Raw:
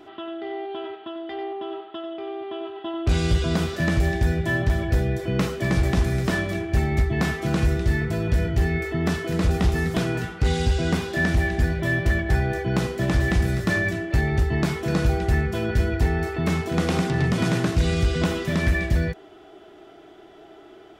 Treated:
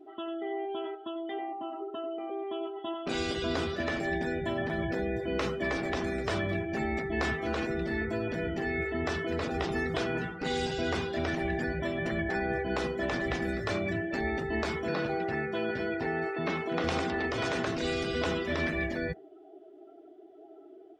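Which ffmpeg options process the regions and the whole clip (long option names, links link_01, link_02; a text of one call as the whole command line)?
ffmpeg -i in.wav -filter_complex "[0:a]asettb=1/sr,asplit=3[link_01][link_02][link_03];[link_01]atrim=end=1.394[link_04];[link_02]atrim=start=1.39:end=2.3,asetpts=PTS-STARTPTS,afade=type=in:duration=0.004:curve=qsin,afade=type=out:start_time=0.906:duration=0.004:curve=qsin,equalizer=frequency=390:width_type=o:width=0.61:gain=12,bandreject=frequency=3400:width=7.1[link_05];[link_03]atrim=start=2.296[link_06];[link_04][link_05]acrossfade=duration=0.004:curve1=hsin:curve2=qsin[link_07];[link_07][link_06]acrossfade=duration=0.004:curve1=qsin:curve2=hsin,asettb=1/sr,asplit=3[link_08][link_09][link_10];[link_08]atrim=end=14.884[link_11];[link_09]atrim=start=14.88:end=16.84,asetpts=PTS-STARTPTS,afade=type=in:duration=0.004:curve=qsin,afade=type=out:start_time=1.956:duration=0.004:curve=qsin,acrossover=split=6100[link_12][link_13];[link_13]acompressor=threshold=-52dB:ratio=4:attack=1:release=60[link_14];[link_12][link_14]amix=inputs=2:normalize=0,highpass=270[link_15];[link_10]atrim=start=16.836[link_16];[link_11][link_15]acrossfade=duration=0.004:curve1=hsin:curve2=qsin[link_17];[link_17][link_16]acrossfade=duration=0.004:curve1=qsin:curve2=hsin,highpass=76,afftfilt=real='re*lt(hypot(re,im),0.355)':imag='im*lt(hypot(re,im),0.355)':win_size=1024:overlap=0.75,afftdn=noise_reduction=21:noise_floor=-41,volume=-3dB" out.wav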